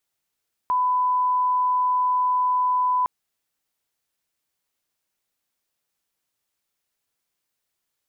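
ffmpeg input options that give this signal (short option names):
-f lavfi -i "sine=f=1000:d=2.36:r=44100,volume=0.06dB"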